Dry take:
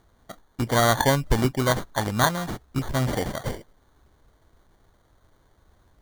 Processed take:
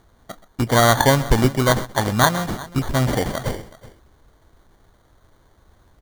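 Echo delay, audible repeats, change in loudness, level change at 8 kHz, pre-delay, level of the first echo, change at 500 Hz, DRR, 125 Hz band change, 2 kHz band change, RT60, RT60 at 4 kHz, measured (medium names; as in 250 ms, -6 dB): 127 ms, 2, +5.0 dB, +5.0 dB, no reverb, -18.0 dB, +5.0 dB, no reverb, +5.5 dB, +5.0 dB, no reverb, no reverb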